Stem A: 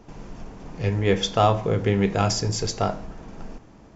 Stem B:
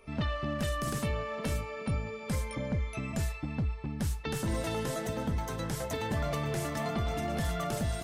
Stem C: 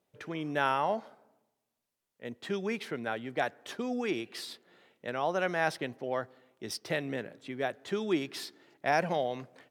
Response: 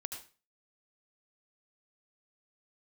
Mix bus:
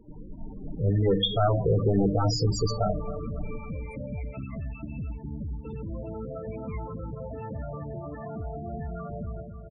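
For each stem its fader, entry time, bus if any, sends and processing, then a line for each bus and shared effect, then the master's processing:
-7.5 dB, 0.00 s, no send, echo send -13.5 dB, resonator 300 Hz, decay 0.43 s, harmonics all, mix 70%; sine folder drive 10 dB, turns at -14.5 dBFS
-3.5 dB, 1.40 s, no send, echo send -7.5 dB, high shelf 2100 Hz -6.5 dB; limiter -30.5 dBFS, peak gain reduction 6.5 dB
-11.0 dB, 1.10 s, no send, echo send -23 dB, band-pass 1600 Hz, Q 2.5; ring modulator with a swept carrier 640 Hz, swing 30%, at 1.3 Hz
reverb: off
echo: feedback echo 0.27 s, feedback 58%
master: notch 5400 Hz, Q 21; AGC gain up to 5.5 dB; loudest bins only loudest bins 16

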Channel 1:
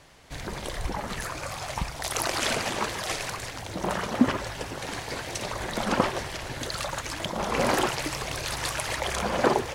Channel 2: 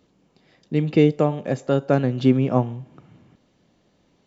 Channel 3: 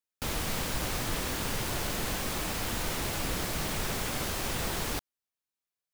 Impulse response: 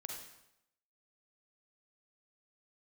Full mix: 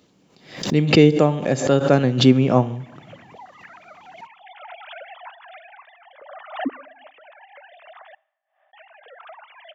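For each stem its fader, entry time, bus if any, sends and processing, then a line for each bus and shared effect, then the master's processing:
-11.0 dB, 2.45 s, muted 8.15–8.73, send -18.5 dB, sine-wave speech
+1.5 dB, 0.00 s, send -11.5 dB, high shelf 2400 Hz +6 dB
off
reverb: on, RT60 0.80 s, pre-delay 38 ms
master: HPF 81 Hz; backwards sustainer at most 110 dB/s

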